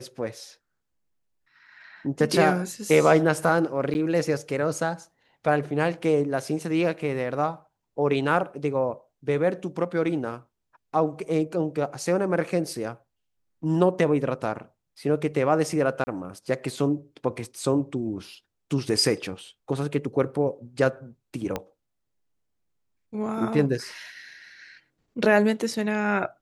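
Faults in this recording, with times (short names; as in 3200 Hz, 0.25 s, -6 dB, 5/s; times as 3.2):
3.94–3.95 gap 9.9 ms
16.04–16.07 gap 30 ms
21.56 pop -14 dBFS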